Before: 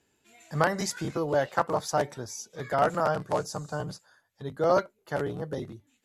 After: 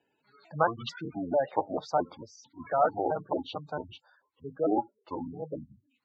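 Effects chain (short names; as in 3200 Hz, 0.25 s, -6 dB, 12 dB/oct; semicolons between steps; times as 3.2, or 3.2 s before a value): trilling pitch shifter -9 st, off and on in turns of 0.222 s; spectral gate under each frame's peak -15 dB strong; speaker cabinet 200–4100 Hz, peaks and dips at 210 Hz -7 dB, 370 Hz -5 dB, 830 Hz +3 dB, 1700 Hz -4 dB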